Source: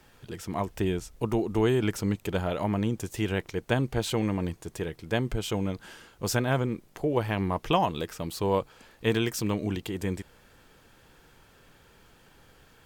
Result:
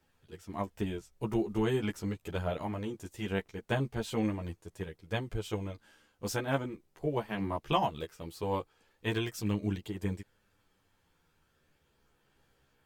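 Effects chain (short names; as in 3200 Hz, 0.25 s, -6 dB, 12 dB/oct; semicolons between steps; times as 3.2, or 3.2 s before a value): chorus voices 2, 0.2 Hz, delay 12 ms, depth 2.7 ms; upward expander 1.5:1, over -48 dBFS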